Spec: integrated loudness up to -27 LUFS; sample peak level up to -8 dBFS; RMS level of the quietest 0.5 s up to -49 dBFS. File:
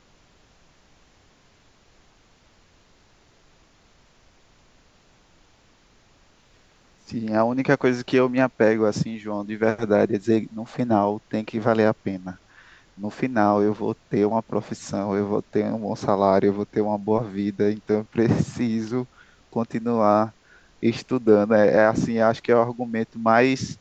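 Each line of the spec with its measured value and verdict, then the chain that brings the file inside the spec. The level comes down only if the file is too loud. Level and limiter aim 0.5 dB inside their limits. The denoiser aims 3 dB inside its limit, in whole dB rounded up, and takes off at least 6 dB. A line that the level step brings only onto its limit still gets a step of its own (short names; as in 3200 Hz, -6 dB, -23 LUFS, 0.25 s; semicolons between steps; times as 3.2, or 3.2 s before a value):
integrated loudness -22.5 LUFS: fail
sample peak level -3.0 dBFS: fail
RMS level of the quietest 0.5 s -58 dBFS: OK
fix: gain -5 dB; limiter -8.5 dBFS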